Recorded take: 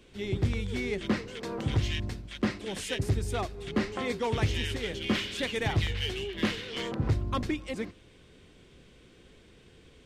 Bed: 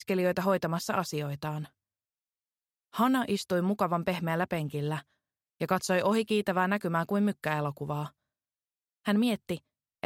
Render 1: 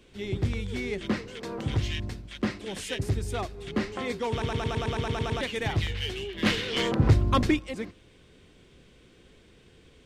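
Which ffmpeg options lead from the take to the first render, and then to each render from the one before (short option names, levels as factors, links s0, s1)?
-filter_complex "[0:a]asplit=13[s0][s1][s2][s3][s4][s5][s6][s7][s8][s9][s10][s11][s12];[s0]atrim=end=4.422[s13];[s1]atrim=start=4.308:end=4.422[s14];[s2]atrim=start=4.308:end=4.422[s15];[s3]atrim=start=4.308:end=4.422[s16];[s4]atrim=start=4.308:end=4.422[s17];[s5]atrim=start=4.308:end=4.422[s18];[s6]atrim=start=4.308:end=4.422[s19];[s7]atrim=start=4.308:end=4.422[s20];[s8]atrim=start=4.308:end=4.422[s21];[s9]atrim=start=4.308:end=4.422[s22];[s10]atrim=start=5.408:end=6.462[s23];[s11]atrim=start=6.458:end=7.592,asetpts=PTS-STARTPTS,volume=2.37[s24];[s12]atrim=start=7.588[s25];[s13][s14]acrossfade=d=0.004:c1=hsin:c2=hsin[s26];[s26][s15]acrossfade=d=0.004:c1=hsin:c2=hsin[s27];[s27][s16]acrossfade=d=0.004:c1=hsin:c2=hsin[s28];[s28][s17]acrossfade=d=0.004:c1=hsin:c2=hsin[s29];[s29][s18]acrossfade=d=0.004:c1=hsin:c2=hsin[s30];[s30][s19]acrossfade=d=0.004:c1=hsin:c2=hsin[s31];[s31][s20]acrossfade=d=0.004:c1=hsin:c2=hsin[s32];[s32][s21]acrossfade=d=0.004:c1=hsin:c2=hsin[s33];[s33][s22]acrossfade=d=0.004:c1=hsin:c2=hsin[s34];[s34][s23]acrossfade=d=0.004:c1=hsin:c2=hsin[s35];[s35][s24]acrossfade=d=0.004:c1=hsin:c2=hsin[s36];[s36][s25]acrossfade=d=0.004:c1=hsin:c2=hsin"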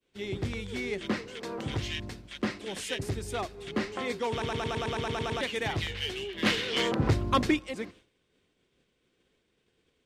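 -af "lowshelf=f=140:g=-10.5,agate=range=0.0224:threshold=0.00398:ratio=3:detection=peak"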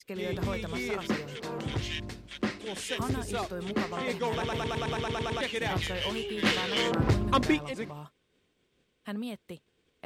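-filter_complex "[1:a]volume=0.316[s0];[0:a][s0]amix=inputs=2:normalize=0"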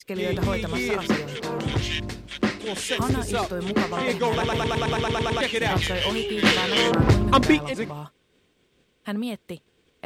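-af "volume=2.37"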